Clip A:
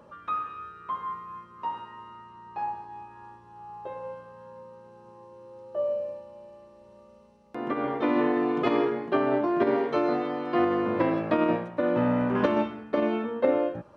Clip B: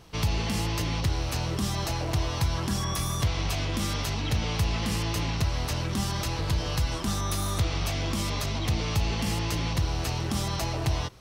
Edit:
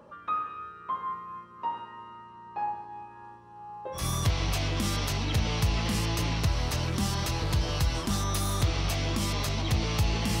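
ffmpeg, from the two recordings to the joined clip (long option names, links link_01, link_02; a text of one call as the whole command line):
ffmpeg -i cue0.wav -i cue1.wav -filter_complex "[0:a]apad=whole_dur=10.4,atrim=end=10.4,atrim=end=4.06,asetpts=PTS-STARTPTS[link_01];[1:a]atrim=start=2.89:end=9.37,asetpts=PTS-STARTPTS[link_02];[link_01][link_02]acrossfade=duration=0.14:curve1=tri:curve2=tri" out.wav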